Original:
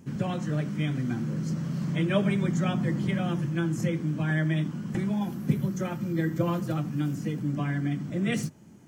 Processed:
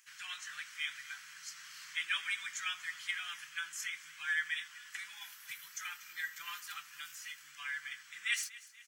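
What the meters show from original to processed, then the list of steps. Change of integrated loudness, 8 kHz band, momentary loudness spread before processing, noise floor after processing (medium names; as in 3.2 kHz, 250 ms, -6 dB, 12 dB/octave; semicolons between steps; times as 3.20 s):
-11.0 dB, +2.5 dB, 5 LU, -57 dBFS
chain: inverse Chebyshev high-pass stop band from 610 Hz, stop band 50 dB; feedback delay 240 ms, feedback 50%, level -18.5 dB; trim +2.5 dB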